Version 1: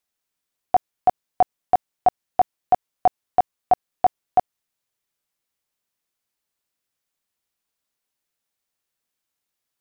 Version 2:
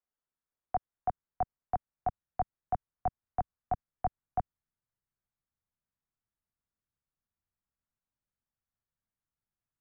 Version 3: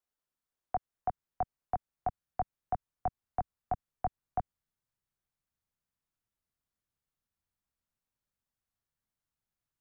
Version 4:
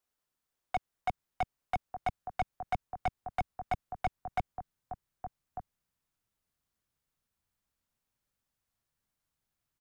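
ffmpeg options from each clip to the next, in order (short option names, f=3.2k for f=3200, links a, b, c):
-filter_complex "[0:a]lowpass=f=1.7k:w=0.5412,lowpass=f=1.7k:w=1.3066,asubboost=boost=5:cutoff=180,acrossover=split=170|240|900[a][b][c][d];[c]alimiter=limit=-21.5dB:level=0:latency=1[e];[a][b][e][d]amix=inputs=4:normalize=0,volume=-8.5dB"
-af "acompressor=threshold=-30dB:ratio=2.5,volume=1dB"
-af "aecho=1:1:1198:0.211,volume=30.5dB,asoftclip=hard,volume=-30.5dB,volume=4.5dB"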